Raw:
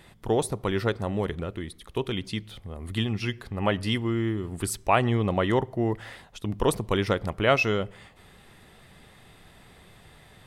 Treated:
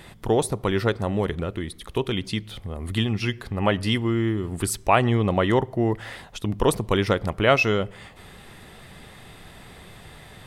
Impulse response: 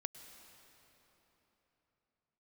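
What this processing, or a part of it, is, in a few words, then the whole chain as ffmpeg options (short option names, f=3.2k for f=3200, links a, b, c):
parallel compression: -filter_complex "[0:a]asplit=2[a][b];[b]acompressor=threshold=-40dB:ratio=6,volume=-2dB[c];[a][c]amix=inputs=2:normalize=0,volume=2.5dB"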